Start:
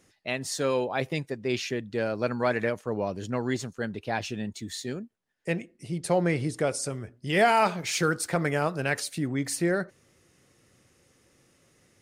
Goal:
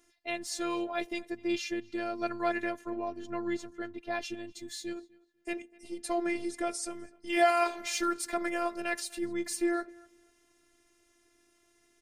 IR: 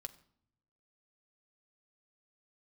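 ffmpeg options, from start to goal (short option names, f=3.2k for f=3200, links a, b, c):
-filter_complex "[0:a]asettb=1/sr,asplit=3[a][b][c];[a]atrim=end=2.904[d];[b]atrim=start=2.9:end=4.11,asetpts=PTS-STARTPTS,afade=t=in:d=0.004:c=qsin,afade=t=out:st=1.206:d=0.004:c=qsin,highshelf=f=3.8k:g=-9[e];[c]atrim=start=4.106[f];[d][e]acrossfade=d=0.004:c1=hsin:c2=qsin[g];[g][f]acrossfade=d=0.004:c1=qsin:c2=hsin,asplit=2[h][i];[i]adelay=248,lowpass=f=4k:p=1,volume=-23.5dB,asplit=2[j][k];[k]adelay=248,lowpass=f=4k:p=1,volume=0.22[l];[h][j][l]amix=inputs=3:normalize=0,afftfilt=real='hypot(re,im)*cos(PI*b)':imag='0':win_size=512:overlap=0.75,volume=-1dB"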